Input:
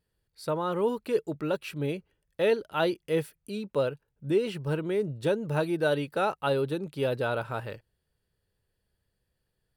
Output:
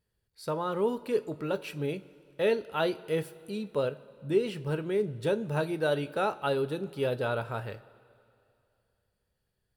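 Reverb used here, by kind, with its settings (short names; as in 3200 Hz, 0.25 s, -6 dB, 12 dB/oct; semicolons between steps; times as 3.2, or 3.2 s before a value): two-slope reverb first 0.25 s, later 2.6 s, from -18 dB, DRR 10 dB; gain -2 dB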